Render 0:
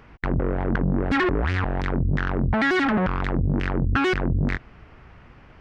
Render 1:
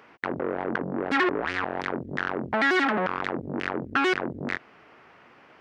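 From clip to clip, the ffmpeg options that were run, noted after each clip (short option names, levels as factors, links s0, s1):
-af "highpass=330"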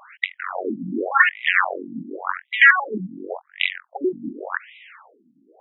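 -af "crystalizer=i=9:c=0,afftfilt=real='re*between(b*sr/1024,210*pow(2800/210,0.5+0.5*sin(2*PI*0.89*pts/sr))/1.41,210*pow(2800/210,0.5+0.5*sin(2*PI*0.89*pts/sr))*1.41)':imag='im*between(b*sr/1024,210*pow(2800/210,0.5+0.5*sin(2*PI*0.89*pts/sr))/1.41,210*pow(2800/210,0.5+0.5*sin(2*PI*0.89*pts/sr))*1.41)':win_size=1024:overlap=0.75,volume=1.78"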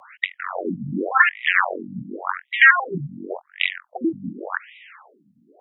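-af "afreqshift=-41"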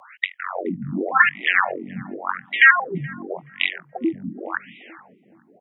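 -filter_complex "[0:a]asplit=2[s0][s1];[s1]adelay=425,lowpass=f=870:p=1,volume=0.126,asplit=2[s2][s3];[s3]adelay=425,lowpass=f=870:p=1,volume=0.44,asplit=2[s4][s5];[s5]adelay=425,lowpass=f=870:p=1,volume=0.44,asplit=2[s6][s7];[s7]adelay=425,lowpass=f=870:p=1,volume=0.44[s8];[s0][s2][s4][s6][s8]amix=inputs=5:normalize=0"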